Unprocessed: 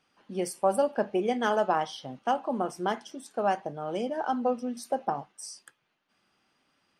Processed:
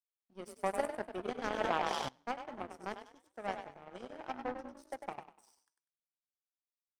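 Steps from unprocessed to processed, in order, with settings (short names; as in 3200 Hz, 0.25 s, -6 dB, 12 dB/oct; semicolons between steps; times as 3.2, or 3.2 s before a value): frequency-shifting echo 98 ms, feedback 53%, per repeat +30 Hz, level -4 dB; power-law curve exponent 2; 1.51–2.09 sustainer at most 21 dB/s; gain -5 dB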